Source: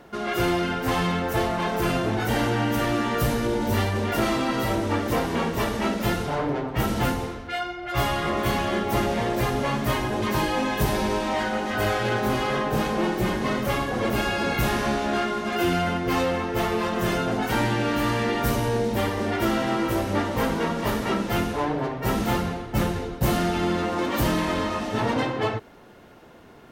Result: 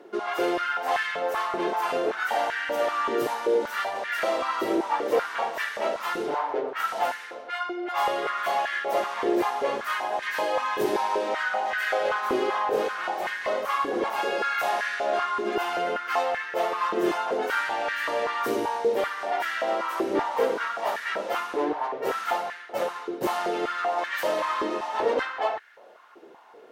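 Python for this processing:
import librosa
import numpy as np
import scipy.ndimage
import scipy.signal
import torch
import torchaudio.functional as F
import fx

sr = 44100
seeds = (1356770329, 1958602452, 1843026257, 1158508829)

y = fx.high_shelf(x, sr, hz=9700.0, db=-7.0)
y = fx.filter_held_highpass(y, sr, hz=5.2, low_hz=370.0, high_hz=1700.0)
y = y * 10.0 ** (-5.0 / 20.0)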